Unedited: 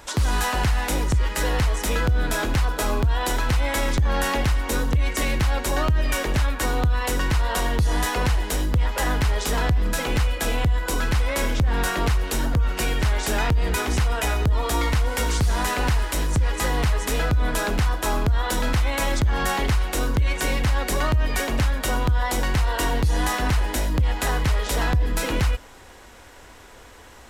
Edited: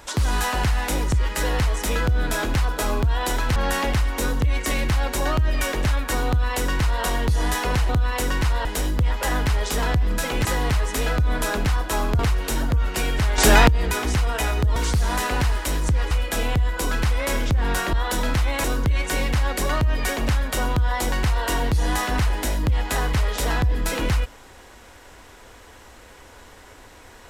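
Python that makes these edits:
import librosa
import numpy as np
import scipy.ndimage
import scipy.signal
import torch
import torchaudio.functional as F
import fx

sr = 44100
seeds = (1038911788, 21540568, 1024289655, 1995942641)

y = fx.edit(x, sr, fx.cut(start_s=3.56, length_s=0.51),
    fx.duplicate(start_s=6.78, length_s=0.76, to_s=8.4),
    fx.swap(start_s=10.2, length_s=1.82, other_s=16.58, other_length_s=1.74),
    fx.clip_gain(start_s=13.21, length_s=0.3, db=9.5),
    fx.cut(start_s=14.59, length_s=0.64),
    fx.cut(start_s=19.03, length_s=0.92), tone=tone)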